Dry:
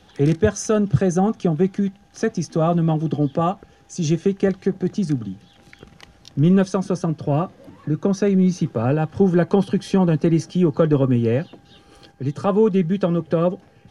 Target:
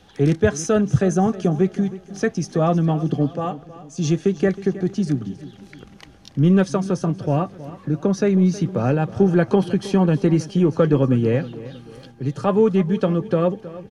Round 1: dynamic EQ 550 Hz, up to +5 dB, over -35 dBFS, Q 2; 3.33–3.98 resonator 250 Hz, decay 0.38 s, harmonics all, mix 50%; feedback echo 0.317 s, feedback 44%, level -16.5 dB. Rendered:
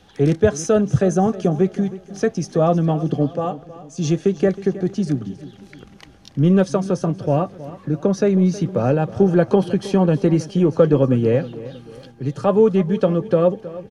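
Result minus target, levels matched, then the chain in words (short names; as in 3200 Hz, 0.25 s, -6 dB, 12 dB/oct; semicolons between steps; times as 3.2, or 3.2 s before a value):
2000 Hz band -3.0 dB
dynamic EQ 2000 Hz, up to +5 dB, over -35 dBFS, Q 2; 3.33–3.98 resonator 250 Hz, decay 0.38 s, harmonics all, mix 50%; feedback echo 0.317 s, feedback 44%, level -16.5 dB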